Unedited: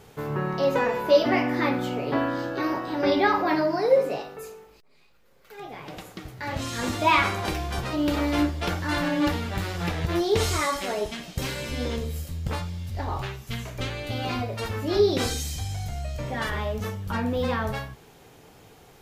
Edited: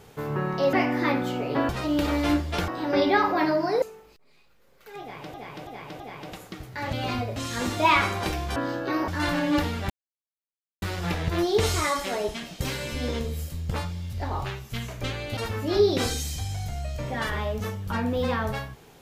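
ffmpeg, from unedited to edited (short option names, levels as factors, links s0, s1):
-filter_complex "[0:a]asplit=14[s0][s1][s2][s3][s4][s5][s6][s7][s8][s9][s10][s11][s12][s13];[s0]atrim=end=0.732[s14];[s1]atrim=start=1.298:end=2.262[s15];[s2]atrim=start=7.778:end=8.772[s16];[s3]atrim=start=2.778:end=3.922[s17];[s4]atrim=start=4.458:end=5.982[s18];[s5]atrim=start=5.648:end=5.982[s19];[s6]atrim=start=5.648:end=5.982[s20];[s7]atrim=start=5.648:end=6.582[s21];[s8]atrim=start=14.138:end=14.572[s22];[s9]atrim=start=6.578:end=7.782[s23];[s10]atrim=start=2.258:end=2.782[s24];[s11]atrim=start=8.768:end=9.59,asetpts=PTS-STARTPTS,afade=t=out:st=0.818:d=0.004:c=hsin,apad=pad_dur=0.92[s25];[s12]atrim=start=9.59:end=14.142,asetpts=PTS-STARTPTS,afade=t=in:d=0.004:c=hsin[s26];[s13]atrim=start=14.568[s27];[s14][s15]acrossfade=d=0.004:c1=hsin:c2=hsin[s28];[s28][s16]acrossfade=d=0.004:c1=hsin:c2=hsin[s29];[s29][s17]acrossfade=d=0.004:c1=hsin:c2=hsin[s30];[s30][s18]acrossfade=d=0.004:c1=hsin:c2=hsin[s31];[s31][s19]acrossfade=d=0.004:c1=hsin:c2=hsin[s32];[s32][s20]acrossfade=d=0.004:c1=hsin:c2=hsin[s33];[s33][s21]acrossfade=d=0.004:c1=hsin:c2=hsin[s34];[s34][s22]acrossfade=d=0.004:c1=hsin:c2=hsin[s35];[s35][s23]acrossfade=d=0.004:c1=hsin:c2=hsin[s36];[s36][s24]acrossfade=d=0.004:c1=hsin:c2=hsin[s37];[s25][s26]concat=n=2:v=0:a=1[s38];[s37][s38]acrossfade=d=0.004:c1=hsin:c2=hsin[s39];[s39][s27]acrossfade=d=0.004:c1=hsin:c2=hsin"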